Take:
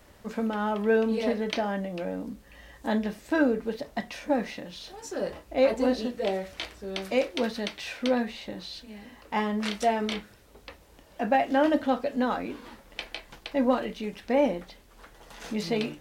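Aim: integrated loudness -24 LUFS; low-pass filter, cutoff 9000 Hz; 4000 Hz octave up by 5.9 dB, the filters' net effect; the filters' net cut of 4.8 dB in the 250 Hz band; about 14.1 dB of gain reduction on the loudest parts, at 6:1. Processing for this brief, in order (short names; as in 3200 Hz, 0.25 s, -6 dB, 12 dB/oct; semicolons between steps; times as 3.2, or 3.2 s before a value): LPF 9000 Hz; bell 250 Hz -5.5 dB; bell 4000 Hz +7.5 dB; compressor 6:1, threshold -35 dBFS; gain +15.5 dB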